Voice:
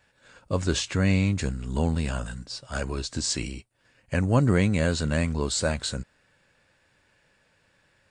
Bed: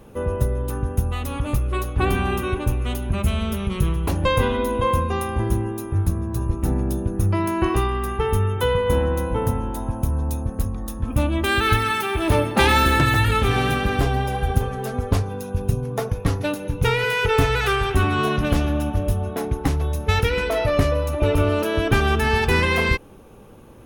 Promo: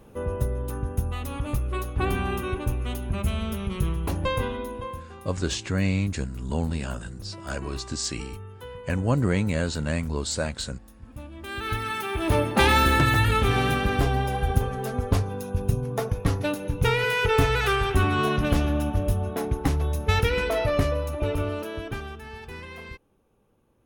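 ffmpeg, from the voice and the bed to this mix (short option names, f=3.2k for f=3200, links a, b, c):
-filter_complex "[0:a]adelay=4750,volume=-2dB[a];[1:a]volume=12.5dB,afade=t=out:st=4.11:d=0.94:silence=0.177828,afade=t=in:st=11.36:d=1.15:silence=0.133352,afade=t=out:st=20.44:d=1.74:silence=0.11885[b];[a][b]amix=inputs=2:normalize=0"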